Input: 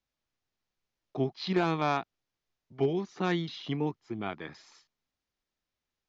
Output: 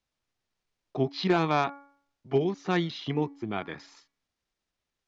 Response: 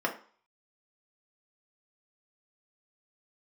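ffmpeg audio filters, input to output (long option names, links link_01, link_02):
-filter_complex "[0:a]atempo=1.2,aresample=22050,aresample=44100,bandreject=frequency=281.3:width_type=h:width=4,bandreject=frequency=562.6:width_type=h:width=4,bandreject=frequency=843.9:width_type=h:width=4,bandreject=frequency=1125.2:width_type=h:width=4,bandreject=frequency=1406.5:width_type=h:width=4,bandreject=frequency=1687.8:width_type=h:width=4,bandreject=frequency=1969.1:width_type=h:width=4,bandreject=frequency=2250.4:width_type=h:width=4,asplit=2[link_01][link_02];[1:a]atrim=start_sample=2205,asetrate=61740,aresample=44100[link_03];[link_02][link_03]afir=irnorm=-1:irlink=0,volume=-28.5dB[link_04];[link_01][link_04]amix=inputs=2:normalize=0,volume=3dB"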